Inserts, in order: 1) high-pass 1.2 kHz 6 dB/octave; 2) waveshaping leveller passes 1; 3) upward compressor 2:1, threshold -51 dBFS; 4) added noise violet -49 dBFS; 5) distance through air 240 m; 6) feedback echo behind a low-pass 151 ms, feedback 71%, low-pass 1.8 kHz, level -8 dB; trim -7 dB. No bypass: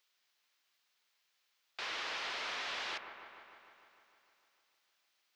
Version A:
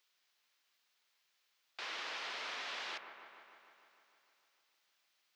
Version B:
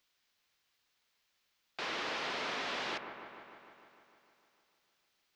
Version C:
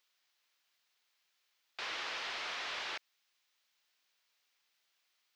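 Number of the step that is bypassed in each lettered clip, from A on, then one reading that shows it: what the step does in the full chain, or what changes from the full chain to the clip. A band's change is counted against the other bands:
2, loudness change -3.0 LU; 1, 250 Hz band +10.5 dB; 6, echo-to-direct -7.0 dB to none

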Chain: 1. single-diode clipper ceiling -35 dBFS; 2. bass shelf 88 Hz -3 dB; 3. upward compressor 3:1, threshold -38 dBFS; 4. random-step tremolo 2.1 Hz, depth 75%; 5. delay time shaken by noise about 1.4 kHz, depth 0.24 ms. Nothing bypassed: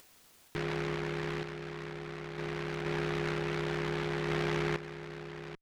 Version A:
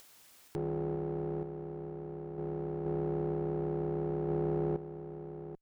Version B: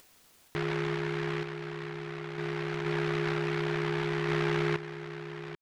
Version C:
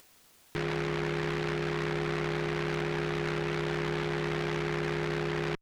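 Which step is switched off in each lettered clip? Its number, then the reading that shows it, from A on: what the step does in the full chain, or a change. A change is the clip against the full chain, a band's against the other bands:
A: 5, 2 kHz band -23.0 dB; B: 1, crest factor change -2.0 dB; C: 4, momentary loudness spread change -11 LU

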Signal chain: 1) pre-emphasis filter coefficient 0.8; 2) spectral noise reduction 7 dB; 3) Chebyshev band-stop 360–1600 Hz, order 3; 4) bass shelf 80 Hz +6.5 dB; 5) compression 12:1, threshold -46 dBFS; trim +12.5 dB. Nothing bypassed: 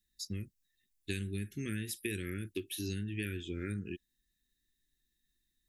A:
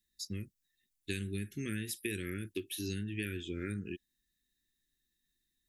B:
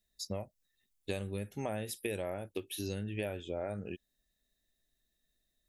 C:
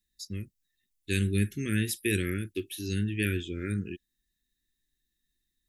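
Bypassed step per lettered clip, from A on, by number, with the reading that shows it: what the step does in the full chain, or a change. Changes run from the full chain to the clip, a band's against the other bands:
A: 4, 125 Hz band -2.0 dB; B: 3, 1 kHz band +16.0 dB; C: 5, mean gain reduction 6.5 dB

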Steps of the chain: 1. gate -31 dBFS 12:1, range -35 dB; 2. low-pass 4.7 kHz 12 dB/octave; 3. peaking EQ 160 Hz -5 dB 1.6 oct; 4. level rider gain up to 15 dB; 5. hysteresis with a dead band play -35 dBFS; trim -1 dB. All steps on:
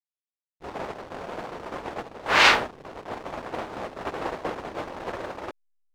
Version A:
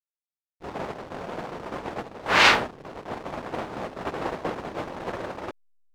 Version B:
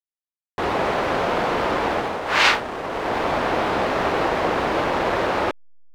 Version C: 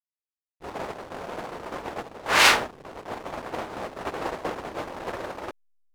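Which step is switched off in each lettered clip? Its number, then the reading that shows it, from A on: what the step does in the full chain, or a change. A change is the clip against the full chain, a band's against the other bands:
3, 125 Hz band +4.0 dB; 1, crest factor change -6.5 dB; 2, 8 kHz band +7.0 dB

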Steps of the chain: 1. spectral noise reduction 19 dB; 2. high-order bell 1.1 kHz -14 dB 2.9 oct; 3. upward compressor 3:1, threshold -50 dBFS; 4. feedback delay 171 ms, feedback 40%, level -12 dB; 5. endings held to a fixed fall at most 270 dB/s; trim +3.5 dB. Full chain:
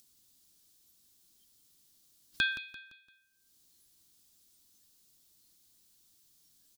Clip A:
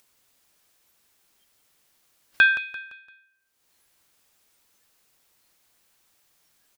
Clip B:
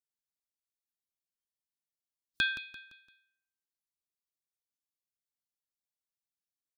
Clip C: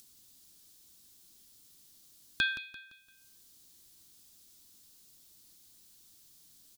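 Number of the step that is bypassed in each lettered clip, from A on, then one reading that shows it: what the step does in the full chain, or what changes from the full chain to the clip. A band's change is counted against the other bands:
2, crest factor change -5.0 dB; 3, 8 kHz band -4.0 dB; 1, 8 kHz band +4.5 dB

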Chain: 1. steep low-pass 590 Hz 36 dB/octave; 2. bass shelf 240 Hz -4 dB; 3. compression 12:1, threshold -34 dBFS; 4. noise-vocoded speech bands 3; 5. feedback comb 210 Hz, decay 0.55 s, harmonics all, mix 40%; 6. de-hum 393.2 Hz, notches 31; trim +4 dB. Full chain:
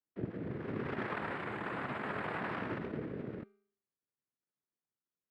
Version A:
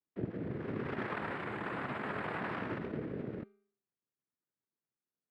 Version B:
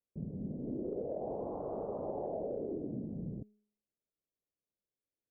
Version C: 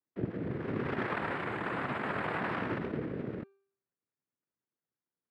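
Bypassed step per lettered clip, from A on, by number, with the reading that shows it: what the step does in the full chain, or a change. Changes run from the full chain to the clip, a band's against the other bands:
2, momentary loudness spread change -1 LU; 4, 1 kHz band -6.5 dB; 5, loudness change +4.0 LU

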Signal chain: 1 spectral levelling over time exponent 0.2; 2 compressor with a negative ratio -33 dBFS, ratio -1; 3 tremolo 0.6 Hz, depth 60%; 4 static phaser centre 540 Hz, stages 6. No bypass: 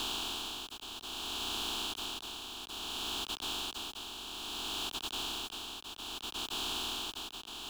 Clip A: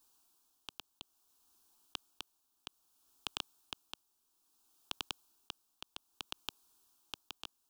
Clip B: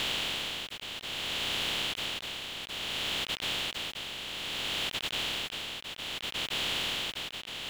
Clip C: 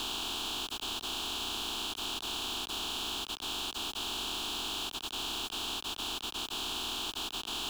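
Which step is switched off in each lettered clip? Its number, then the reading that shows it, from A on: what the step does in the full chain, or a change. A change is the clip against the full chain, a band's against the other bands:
1, 2 kHz band +4.5 dB; 4, 2 kHz band +7.0 dB; 3, momentary loudness spread change -6 LU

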